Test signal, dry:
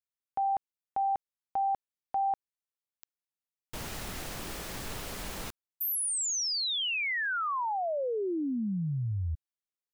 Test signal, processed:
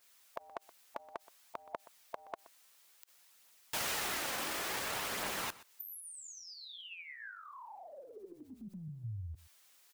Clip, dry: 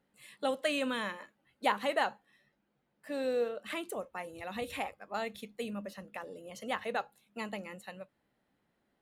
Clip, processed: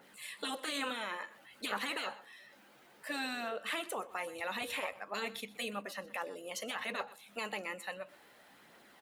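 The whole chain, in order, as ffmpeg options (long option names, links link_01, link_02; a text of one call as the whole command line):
ffmpeg -i in.wav -af "highpass=frequency=920:poles=1,afftfilt=real='re*lt(hypot(re,im),0.0501)':imag='im*lt(hypot(re,im),0.0501)':win_size=1024:overlap=0.75,acompressor=mode=upward:threshold=-55dB:ratio=2.5:attack=0.23:release=33:knee=2.83:detection=peak,alimiter=level_in=11dB:limit=-24dB:level=0:latency=1:release=11,volume=-11dB,aphaser=in_gain=1:out_gain=1:delay=4:decay=0.28:speed=0.57:type=triangular,aecho=1:1:124:0.119,adynamicequalizer=threshold=0.00126:dfrequency=2700:dqfactor=0.7:tfrequency=2700:tqfactor=0.7:attack=5:release=100:ratio=0.4:range=3:mode=cutabove:tftype=highshelf,volume=9dB" out.wav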